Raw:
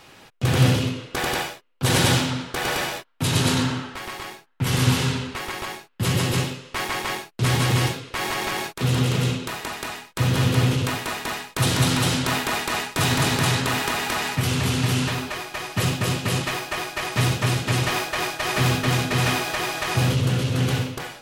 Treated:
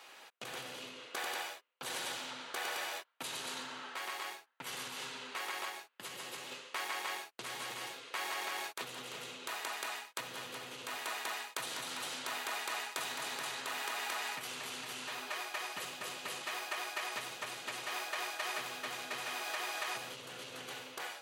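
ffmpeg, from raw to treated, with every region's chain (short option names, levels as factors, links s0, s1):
-filter_complex "[0:a]asettb=1/sr,asplit=3[s0][s1][s2];[s0]atrim=end=5.694[s3];[s1]atrim=start=5.69:end=6.52,asetpts=PTS-STARTPTS,afade=t=in:d=0.004:c=qsin,afade=t=out:st=0.826:d=0.004:c=qsin,highpass=62,acompressor=threshold=0.0251:ratio=4:attack=3.2:release=140:knee=1:detection=peak[s4];[s2]atrim=start=6.516[s5];[s3][s4]acrossfade=d=0.004:c1=hsin:c2=qsin[s6];[s6][s5]acrossfade=d=0.004:c1=qsin:c2=hsin,acompressor=threshold=0.0355:ratio=6,highpass=570,bandreject=f=5300:w=18,volume=0.531"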